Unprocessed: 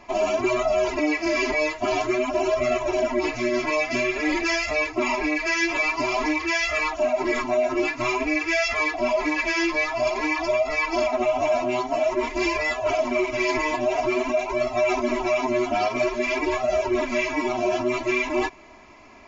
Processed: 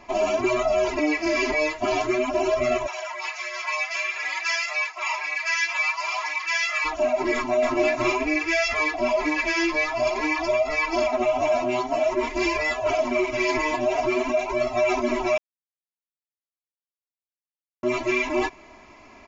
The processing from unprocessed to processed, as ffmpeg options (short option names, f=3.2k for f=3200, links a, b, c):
-filter_complex "[0:a]asplit=3[a][b][c];[a]afade=t=out:st=2.86:d=0.02[d];[b]highpass=f=870:w=0.5412,highpass=f=870:w=1.3066,afade=t=in:st=2.86:d=0.02,afade=t=out:st=6.84:d=0.02[e];[c]afade=t=in:st=6.84:d=0.02[f];[d][e][f]amix=inputs=3:normalize=0,asplit=2[g][h];[h]afade=t=in:st=7.34:d=0.01,afade=t=out:st=7.84:d=0.01,aecho=0:1:280|560:0.668344|0.0668344[i];[g][i]amix=inputs=2:normalize=0,asplit=3[j][k][l];[j]atrim=end=15.38,asetpts=PTS-STARTPTS,afade=t=out:st=15.376:d=0.004:c=hsin[m];[k]atrim=start=15.38:end=17.83,asetpts=PTS-STARTPTS,volume=0[n];[l]atrim=start=17.83,asetpts=PTS-STARTPTS,afade=t=in:d=0.004:c=hsin[o];[m][n][o]concat=n=3:v=0:a=1"